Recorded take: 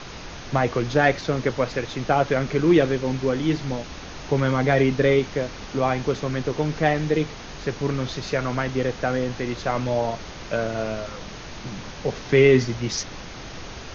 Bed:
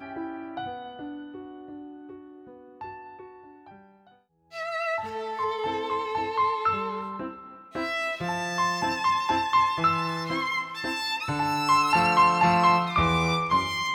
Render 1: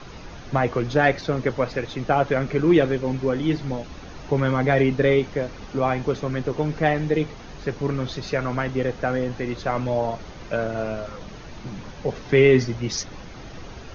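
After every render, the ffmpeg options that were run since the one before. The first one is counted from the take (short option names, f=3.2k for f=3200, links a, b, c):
-af "afftdn=nr=8:nf=-38"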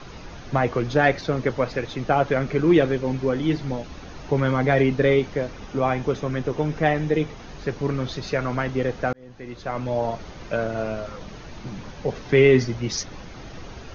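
-filter_complex "[0:a]asettb=1/sr,asplit=3[a][b][c];[a]atrim=end=5.524[d];[b]atrim=start=5.52:end=7.4,asetpts=PTS-STARTPTS,afade=t=in:d=0.004:c=qsin,afade=t=out:st=1.876:d=0.004:c=qsin,bandreject=f=4.4k:w=11[e];[c]atrim=start=7.396[f];[d][e]acrossfade=d=0.004:c1=hsin:c2=qsin[g];[g][f]acrossfade=d=0.004:c1=qsin:c2=hsin,asplit=2[h][i];[h]atrim=end=9.13,asetpts=PTS-STARTPTS,afade=t=out:st=9.126:d=0.004:c=hsin[j];[i]atrim=start=9.13,asetpts=PTS-STARTPTS,afade=t=in:d=0.95[k];[j][k]concat=n=2:v=0:a=1"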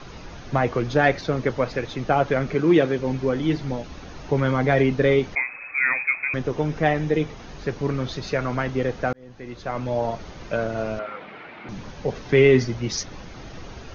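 -filter_complex "[0:a]asettb=1/sr,asplit=3[a][b][c];[a]atrim=end=2.544[d];[b]atrim=start=2.54:end=2.99,asetpts=PTS-STARTPTS,afade=t=in:d=0.004:c=qsin,afade=t=out:st=0.446:d=0.004:c=qsin,highpass=120[e];[c]atrim=start=2.986[f];[d][e]acrossfade=d=0.004:c1=hsin:c2=qsin[g];[g][f]acrossfade=d=0.004:c1=qsin:c2=hsin,asettb=1/sr,asplit=3[h][i][j];[h]atrim=end=5.354[k];[i]atrim=start=5.35:end=6.34,asetpts=PTS-STARTPTS,afade=t=in:d=0.004:c=qsin,afade=t=out:st=0.986:d=0.004:c=qsin,lowpass=f=2.2k:t=q:w=0.5098,lowpass=f=2.2k:t=q:w=0.6013,lowpass=f=2.2k:t=q:w=0.9,lowpass=f=2.2k:t=q:w=2.563,afreqshift=-2600[l];[j]atrim=start=6.336[m];[k][l]acrossfade=d=0.004:c1=hsin:c2=qsin[n];[n][m]acrossfade=d=0.004:c1=qsin:c2=hsin,asettb=1/sr,asplit=3[o][p][q];[o]atrim=end=10.994[r];[p]atrim=start=10.99:end=11.69,asetpts=PTS-STARTPTS,afade=t=in:d=0.004:c=qsin,afade=t=out:st=0.696:d=0.004:c=qsin,highpass=270,equalizer=f=780:t=q:w=4:g=4,equalizer=f=1.4k:t=q:w=4:g=7,equalizer=f=2.2k:t=q:w=4:g=10,lowpass=f=3.3k:w=0.5412,lowpass=f=3.3k:w=1.3066[s];[q]atrim=start=11.686[t];[r][s]acrossfade=d=0.004:c1=hsin:c2=qsin[u];[u][t]acrossfade=d=0.004:c1=qsin:c2=hsin"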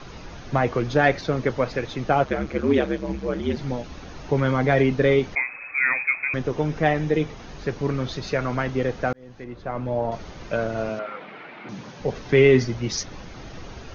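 -filter_complex "[0:a]asettb=1/sr,asplit=3[a][b][c];[a]atrim=end=2.244[d];[b]atrim=start=2.24:end=3.57,asetpts=PTS-STARTPTS,afade=t=in:d=0.004:c=qsin,afade=t=out:st=1.326:d=0.004:c=qsin,aeval=exprs='val(0)*sin(2*PI*70*n/s)':c=same[e];[c]atrim=start=3.566[f];[d][e]acrossfade=d=0.004:c1=hsin:c2=qsin[g];[g][f]acrossfade=d=0.004:c1=qsin:c2=hsin,asettb=1/sr,asplit=3[h][i][j];[h]atrim=end=9.444[k];[i]atrim=start=9.44:end=10.12,asetpts=PTS-STARTPTS,afade=t=in:d=0.004:c=qsin,afade=t=out:st=0.676:d=0.004:c=qsin,lowpass=f=1.4k:p=1[l];[j]atrim=start=10.116[m];[k][l]acrossfade=d=0.004:c1=hsin:c2=qsin[n];[n][m]acrossfade=d=0.004:c1=qsin:c2=hsin,asettb=1/sr,asplit=3[o][p][q];[o]atrim=end=10.894[r];[p]atrim=start=10.89:end=12,asetpts=PTS-STARTPTS,afade=t=in:d=0.004:c=qsin,afade=t=out:st=1.106:d=0.004:c=qsin,highpass=f=120:w=0.5412,highpass=f=120:w=1.3066[s];[q]atrim=start=11.996[t];[r][s]acrossfade=d=0.004:c1=hsin:c2=qsin[u];[u][t]acrossfade=d=0.004:c1=qsin:c2=hsin"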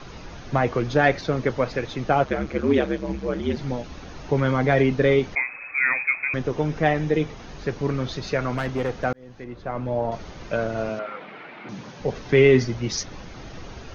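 -filter_complex "[0:a]asplit=3[a][b][c];[a]afade=t=out:st=8.5:d=0.02[d];[b]volume=19.5dB,asoftclip=hard,volume=-19.5dB,afade=t=in:st=8.5:d=0.02,afade=t=out:st=9.03:d=0.02[e];[c]afade=t=in:st=9.03:d=0.02[f];[d][e][f]amix=inputs=3:normalize=0"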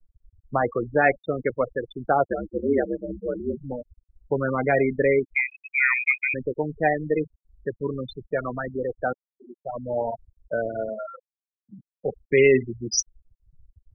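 -af "afftfilt=real='re*gte(hypot(re,im),0.126)':imag='im*gte(hypot(re,im),0.126)':win_size=1024:overlap=0.75,bass=f=250:g=-9,treble=f=4k:g=12"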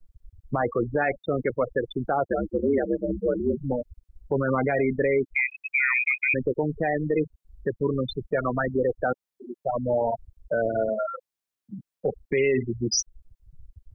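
-filter_complex "[0:a]asplit=2[a][b];[b]acompressor=threshold=-30dB:ratio=6,volume=1.5dB[c];[a][c]amix=inputs=2:normalize=0,alimiter=limit=-15dB:level=0:latency=1:release=19"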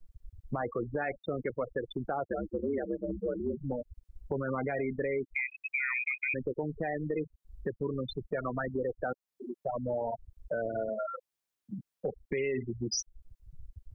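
-af "acompressor=threshold=-37dB:ratio=2"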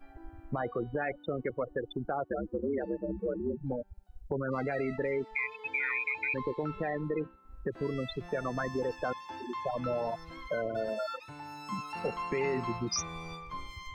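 -filter_complex "[1:a]volume=-18.5dB[a];[0:a][a]amix=inputs=2:normalize=0"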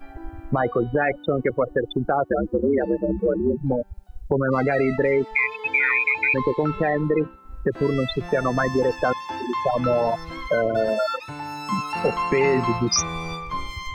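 -af "volume=12dB"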